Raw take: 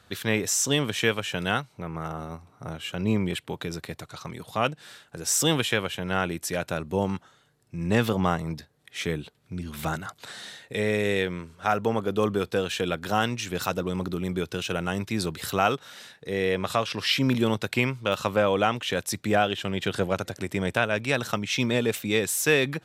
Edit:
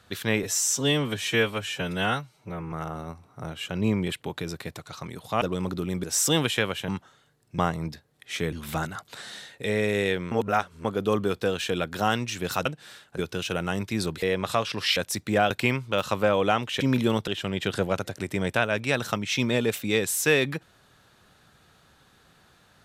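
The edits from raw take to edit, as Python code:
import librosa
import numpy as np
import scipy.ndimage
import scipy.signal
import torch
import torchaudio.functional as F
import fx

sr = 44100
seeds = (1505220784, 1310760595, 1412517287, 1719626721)

y = fx.edit(x, sr, fx.stretch_span(start_s=0.43, length_s=1.53, factor=1.5),
    fx.swap(start_s=4.65, length_s=0.53, other_s=13.76, other_length_s=0.62),
    fx.cut(start_s=6.03, length_s=1.05),
    fx.cut(start_s=7.78, length_s=0.46),
    fx.cut(start_s=9.18, length_s=0.45),
    fx.reverse_span(start_s=11.42, length_s=0.53),
    fx.cut(start_s=15.42, length_s=1.01),
    fx.swap(start_s=17.17, length_s=0.47, other_s=18.94, other_length_s=0.54), tone=tone)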